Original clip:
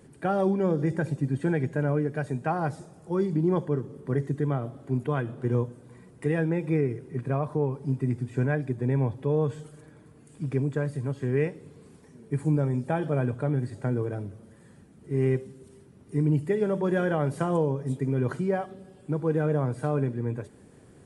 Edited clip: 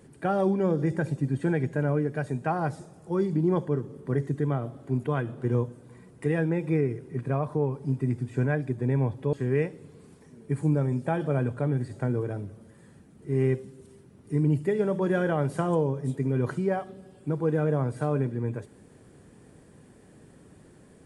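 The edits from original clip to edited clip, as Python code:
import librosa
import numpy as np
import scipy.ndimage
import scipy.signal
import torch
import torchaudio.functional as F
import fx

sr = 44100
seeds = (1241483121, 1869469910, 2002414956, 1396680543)

y = fx.edit(x, sr, fx.cut(start_s=9.33, length_s=1.82), tone=tone)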